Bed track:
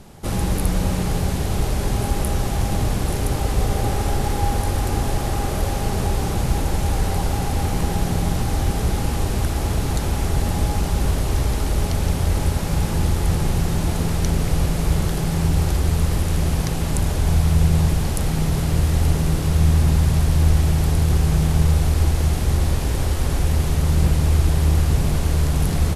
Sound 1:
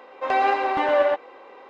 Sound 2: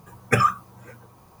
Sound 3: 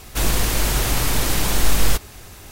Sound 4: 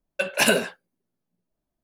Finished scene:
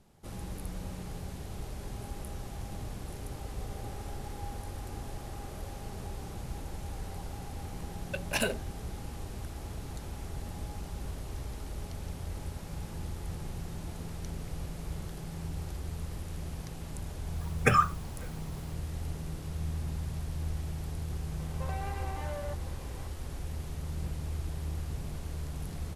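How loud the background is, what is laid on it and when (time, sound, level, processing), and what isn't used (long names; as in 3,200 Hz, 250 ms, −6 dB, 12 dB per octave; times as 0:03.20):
bed track −19 dB
0:07.94: mix in 4 −10.5 dB + adaptive Wiener filter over 41 samples
0:17.34: mix in 2 −4.5 dB
0:21.39: mix in 1 −8 dB + downward compressor 4 to 1, threshold −32 dBFS
not used: 3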